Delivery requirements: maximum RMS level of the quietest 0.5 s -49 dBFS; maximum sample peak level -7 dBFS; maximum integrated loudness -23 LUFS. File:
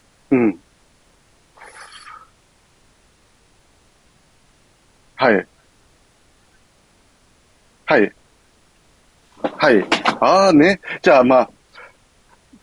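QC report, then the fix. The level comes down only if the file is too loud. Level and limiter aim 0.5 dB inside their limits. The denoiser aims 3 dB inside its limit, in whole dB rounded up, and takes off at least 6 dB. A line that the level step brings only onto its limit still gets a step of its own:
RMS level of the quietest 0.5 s -56 dBFS: pass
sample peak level -2.0 dBFS: fail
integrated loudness -15.5 LUFS: fail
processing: trim -8 dB

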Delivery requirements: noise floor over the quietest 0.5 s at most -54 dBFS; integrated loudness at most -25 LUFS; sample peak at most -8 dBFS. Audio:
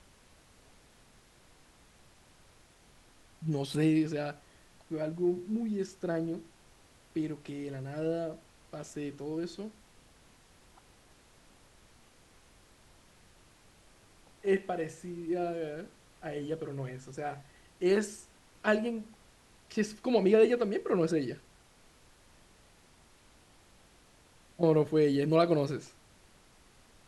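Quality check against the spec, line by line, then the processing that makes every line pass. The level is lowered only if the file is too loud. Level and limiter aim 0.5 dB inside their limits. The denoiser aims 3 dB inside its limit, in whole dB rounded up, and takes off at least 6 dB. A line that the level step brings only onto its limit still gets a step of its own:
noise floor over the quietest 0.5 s -61 dBFS: pass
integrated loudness -32.0 LUFS: pass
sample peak -13.0 dBFS: pass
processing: none needed

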